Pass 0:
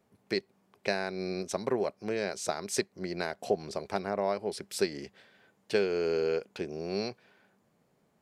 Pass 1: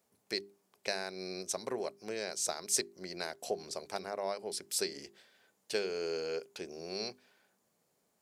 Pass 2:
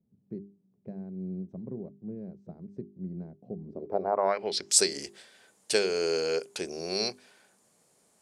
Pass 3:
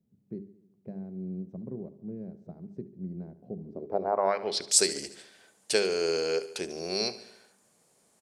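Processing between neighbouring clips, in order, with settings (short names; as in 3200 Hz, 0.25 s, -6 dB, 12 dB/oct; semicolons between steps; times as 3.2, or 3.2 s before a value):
tone controls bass -6 dB, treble +12 dB; notches 50/100/150/200/250/300/350/400 Hz; gain -6 dB
low-pass sweep 180 Hz -> 9300 Hz, 3.64–4.82; ending taper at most 430 dB/s; gain +8 dB
feedback echo 72 ms, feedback 59%, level -16 dB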